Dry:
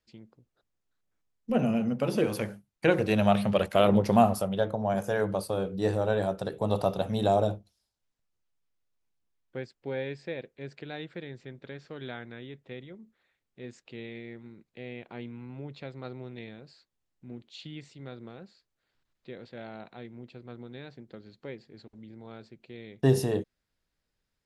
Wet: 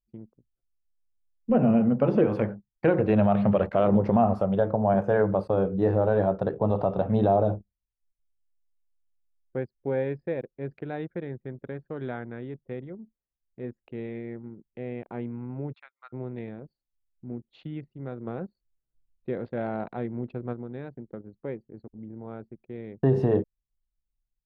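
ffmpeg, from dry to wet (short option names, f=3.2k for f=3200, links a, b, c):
-filter_complex "[0:a]asplit=3[a][b][c];[a]afade=t=out:st=15.72:d=0.02[d];[b]highpass=f=1.2k:w=0.5412,highpass=f=1.2k:w=1.3066,afade=t=in:st=15.72:d=0.02,afade=t=out:st=16.12:d=0.02[e];[c]afade=t=in:st=16.12:d=0.02[f];[d][e][f]amix=inputs=3:normalize=0,asplit=3[g][h][i];[g]afade=t=out:st=18.26:d=0.02[j];[h]acontrast=43,afade=t=in:st=18.26:d=0.02,afade=t=out:st=20.52:d=0.02[k];[i]afade=t=in:st=20.52:d=0.02[l];[j][k][l]amix=inputs=3:normalize=0,anlmdn=0.00631,lowpass=1.3k,alimiter=limit=-18dB:level=0:latency=1:release=121,volume=6.5dB"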